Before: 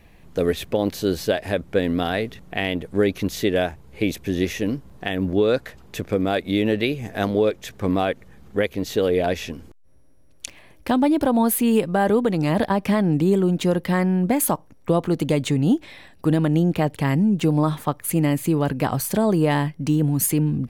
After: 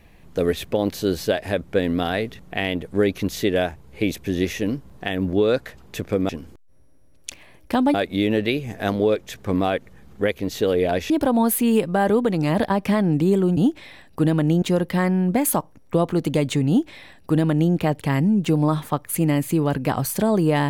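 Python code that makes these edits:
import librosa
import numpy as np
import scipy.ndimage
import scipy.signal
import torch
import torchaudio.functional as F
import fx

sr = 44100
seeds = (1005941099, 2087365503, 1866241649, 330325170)

y = fx.edit(x, sr, fx.move(start_s=9.45, length_s=1.65, to_s=6.29),
    fx.duplicate(start_s=15.63, length_s=1.05, to_s=13.57), tone=tone)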